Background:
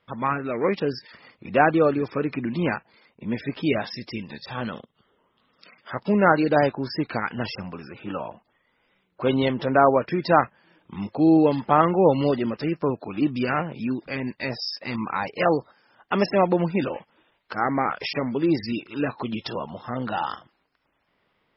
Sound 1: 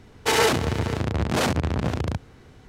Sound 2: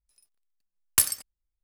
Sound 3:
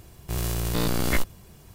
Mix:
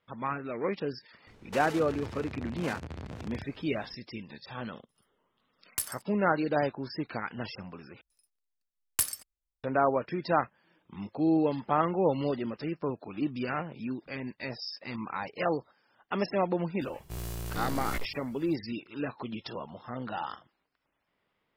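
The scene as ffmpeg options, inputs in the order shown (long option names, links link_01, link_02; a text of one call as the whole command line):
ffmpeg -i bed.wav -i cue0.wav -i cue1.wav -i cue2.wav -filter_complex "[2:a]asplit=2[link_01][link_02];[0:a]volume=-8.5dB[link_03];[1:a]acompressor=threshold=-29dB:ratio=6:attack=3.2:release=140:knee=1:detection=peak[link_04];[3:a]asoftclip=type=tanh:threshold=-17.5dB[link_05];[link_03]asplit=2[link_06][link_07];[link_06]atrim=end=8.014[link_08];[link_02]atrim=end=1.63,asetpts=PTS-STARTPTS,volume=-7dB[link_09];[link_07]atrim=start=9.636[link_10];[link_04]atrim=end=2.68,asetpts=PTS-STARTPTS,volume=-8dB,afade=type=in:duration=0.004:curve=hsin,afade=type=out:start_time=2.676:duration=0.004:curve=hsin,adelay=1270[link_11];[link_01]atrim=end=1.63,asetpts=PTS-STARTPTS,volume=-12dB,afade=type=in:duration=0.004:curve=hsin,afade=type=out:start_time=1.626:duration=0.004:curve=hsin,adelay=4800[link_12];[link_05]atrim=end=1.74,asetpts=PTS-STARTPTS,volume=-9dB,afade=type=in:duration=0.004:curve=hsin,afade=type=out:start_time=1.736:duration=0.004:curve=hsin,adelay=16810[link_13];[link_08][link_09]acrossfade=duration=0.004:curve1=hsin:curve2=hsin[link_14];[link_14][link_10]acrossfade=duration=0.004:curve1=hsin:curve2=hsin[link_15];[link_15][link_11][link_12][link_13]amix=inputs=4:normalize=0" out.wav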